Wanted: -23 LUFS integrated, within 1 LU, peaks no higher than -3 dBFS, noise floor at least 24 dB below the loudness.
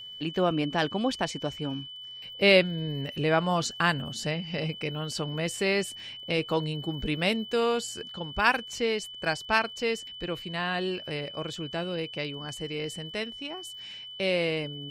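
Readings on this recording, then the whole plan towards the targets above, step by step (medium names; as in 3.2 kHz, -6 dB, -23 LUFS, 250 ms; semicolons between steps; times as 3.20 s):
tick rate 41 per s; steady tone 3 kHz; tone level -40 dBFS; loudness -29.0 LUFS; peak level -6.5 dBFS; loudness target -23.0 LUFS
-> de-click; band-stop 3 kHz, Q 30; trim +6 dB; peak limiter -3 dBFS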